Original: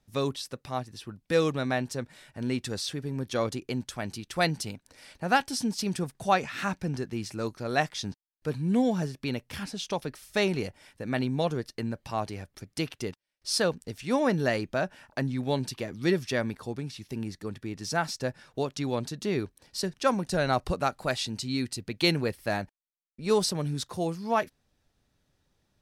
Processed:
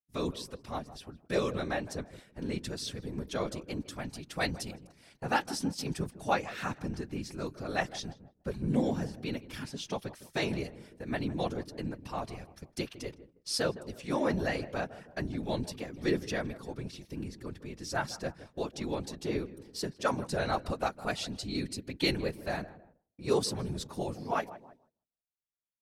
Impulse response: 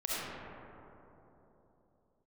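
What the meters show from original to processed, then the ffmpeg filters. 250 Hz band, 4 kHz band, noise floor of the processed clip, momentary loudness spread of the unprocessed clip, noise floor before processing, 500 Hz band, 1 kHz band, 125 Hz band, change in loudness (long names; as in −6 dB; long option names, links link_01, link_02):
−5.0 dB, −5.0 dB, −74 dBFS, 11 LU, −75 dBFS, −5.0 dB, −5.0 dB, −5.5 dB, −5.0 dB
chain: -filter_complex "[0:a]asplit=2[link_01][link_02];[link_02]adelay=159,lowpass=frequency=1100:poles=1,volume=-14.5dB,asplit=2[link_03][link_04];[link_04]adelay=159,lowpass=frequency=1100:poles=1,volume=0.51,asplit=2[link_05][link_06];[link_06]adelay=159,lowpass=frequency=1100:poles=1,volume=0.51,asplit=2[link_07][link_08];[link_08]adelay=159,lowpass=frequency=1100:poles=1,volume=0.51,asplit=2[link_09][link_10];[link_10]adelay=159,lowpass=frequency=1100:poles=1,volume=0.51[link_11];[link_01][link_03][link_05][link_07][link_09][link_11]amix=inputs=6:normalize=0,afftfilt=real='hypot(re,im)*cos(2*PI*random(0))':imag='hypot(re,im)*sin(2*PI*random(1))':win_size=512:overlap=0.75,agate=range=-33dB:threshold=-51dB:ratio=3:detection=peak,volume=1dB"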